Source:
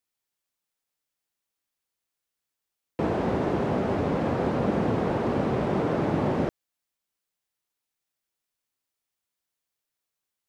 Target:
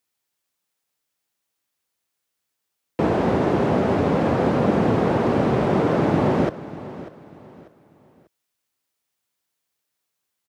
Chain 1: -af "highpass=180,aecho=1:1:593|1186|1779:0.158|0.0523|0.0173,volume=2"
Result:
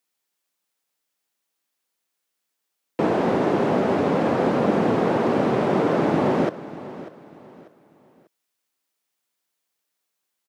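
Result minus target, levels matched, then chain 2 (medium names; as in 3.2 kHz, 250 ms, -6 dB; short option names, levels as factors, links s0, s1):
125 Hz band -4.0 dB
-af "highpass=68,aecho=1:1:593|1186|1779:0.158|0.0523|0.0173,volume=2"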